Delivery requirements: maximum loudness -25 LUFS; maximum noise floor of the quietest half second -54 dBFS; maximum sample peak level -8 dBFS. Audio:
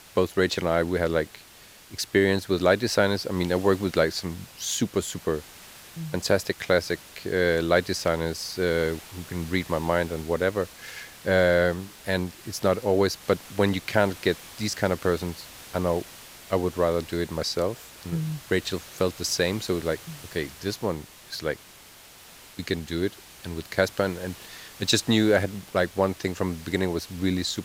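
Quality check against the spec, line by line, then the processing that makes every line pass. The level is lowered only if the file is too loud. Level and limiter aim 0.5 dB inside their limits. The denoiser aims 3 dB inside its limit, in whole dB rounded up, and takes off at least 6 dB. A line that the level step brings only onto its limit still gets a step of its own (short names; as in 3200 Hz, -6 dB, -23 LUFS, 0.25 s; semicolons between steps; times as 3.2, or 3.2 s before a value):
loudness -26.0 LUFS: OK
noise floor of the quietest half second -50 dBFS: fail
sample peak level -5.5 dBFS: fail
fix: denoiser 7 dB, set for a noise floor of -50 dBFS; limiter -8.5 dBFS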